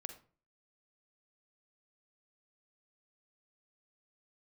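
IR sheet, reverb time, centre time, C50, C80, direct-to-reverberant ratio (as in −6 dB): 0.40 s, 11 ms, 9.5 dB, 15.0 dB, 7.0 dB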